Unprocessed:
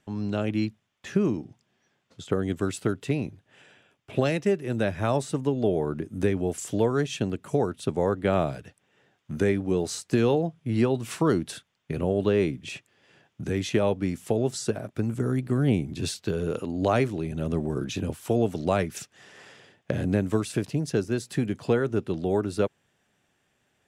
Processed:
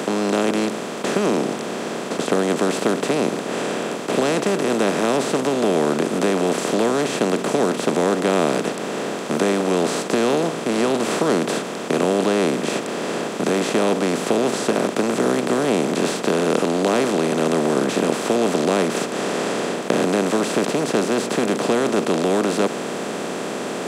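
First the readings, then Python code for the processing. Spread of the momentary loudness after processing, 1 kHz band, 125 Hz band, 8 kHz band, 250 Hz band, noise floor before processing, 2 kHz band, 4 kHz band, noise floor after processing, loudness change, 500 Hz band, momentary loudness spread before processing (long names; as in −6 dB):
6 LU, +11.5 dB, −2.0 dB, +11.5 dB, +6.5 dB, −73 dBFS, +11.0 dB, +12.5 dB, −28 dBFS, +6.5 dB, +8.0 dB, 7 LU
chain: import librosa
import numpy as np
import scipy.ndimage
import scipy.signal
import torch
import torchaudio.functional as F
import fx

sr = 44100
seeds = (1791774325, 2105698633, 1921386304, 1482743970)

y = fx.bin_compress(x, sr, power=0.2)
y = scipy.signal.sosfilt(scipy.signal.butter(4, 190.0, 'highpass', fs=sr, output='sos'), y)
y = y * 10.0 ** (-2.0 / 20.0)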